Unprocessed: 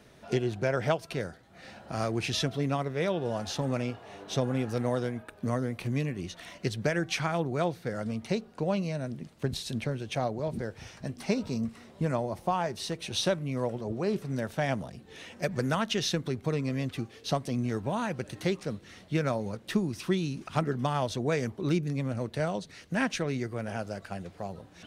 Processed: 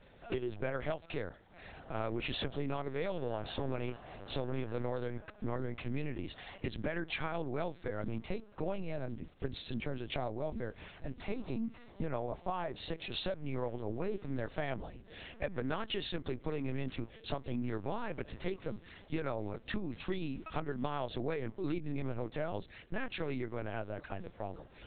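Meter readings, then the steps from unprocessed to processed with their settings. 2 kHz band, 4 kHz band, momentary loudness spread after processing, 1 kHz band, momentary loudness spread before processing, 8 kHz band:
-7.0 dB, -8.0 dB, 6 LU, -7.5 dB, 9 LU, under -40 dB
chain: HPF 110 Hz 12 dB/oct; compressor 6:1, threshold -29 dBFS, peak gain reduction 8.5 dB; LPC vocoder at 8 kHz pitch kept; gain -2.5 dB

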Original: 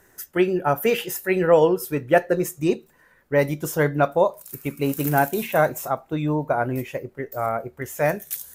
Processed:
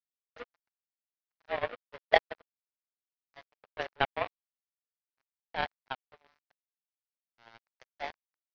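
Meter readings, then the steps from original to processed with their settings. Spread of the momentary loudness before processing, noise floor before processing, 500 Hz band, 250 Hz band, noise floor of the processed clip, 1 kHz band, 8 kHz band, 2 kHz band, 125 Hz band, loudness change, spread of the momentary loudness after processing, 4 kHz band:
10 LU, -58 dBFS, -17.5 dB, -29.0 dB, under -85 dBFS, -12.0 dB, under -35 dB, -10.0 dB, -27.0 dB, -11.0 dB, 22 LU, -5.0 dB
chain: notch 1100 Hz, Q 6.6; in parallel at +1.5 dB: compressor 16:1, threshold -26 dBFS, peak gain reduction 16.5 dB; on the sum: tremolo 0.51 Hz, depth 92%; on a send: feedback echo 72 ms, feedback 34%, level -18.5 dB; on the sum: sample gate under -18 dBFS; mistuned SSB +120 Hz 330–2200 Hz; power-law curve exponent 3

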